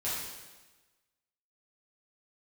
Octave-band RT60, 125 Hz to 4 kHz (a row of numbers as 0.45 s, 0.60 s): 1.2 s, 1.3 s, 1.2 s, 1.2 s, 1.2 s, 1.1 s